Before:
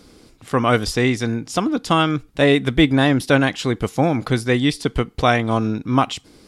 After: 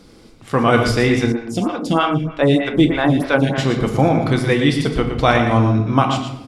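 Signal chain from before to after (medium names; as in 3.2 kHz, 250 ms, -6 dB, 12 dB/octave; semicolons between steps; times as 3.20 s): treble shelf 5.9 kHz -5.5 dB; echo from a far wall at 20 m, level -7 dB; simulated room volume 310 m³, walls mixed, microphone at 0.7 m; 1.32–3.58 s: lamp-driven phase shifter 3.2 Hz; trim +1 dB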